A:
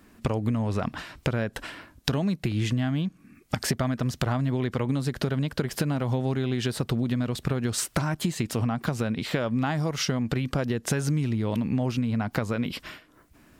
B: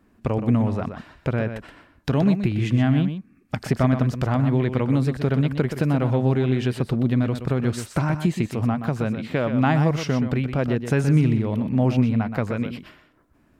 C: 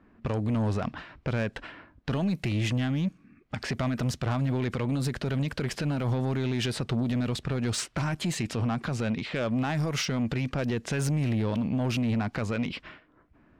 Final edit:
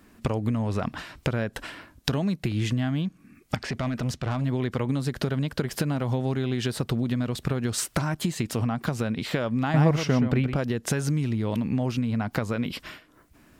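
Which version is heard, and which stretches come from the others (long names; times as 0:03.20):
A
0:03.56–0:04.44: punch in from C
0:09.74–0:10.56: punch in from B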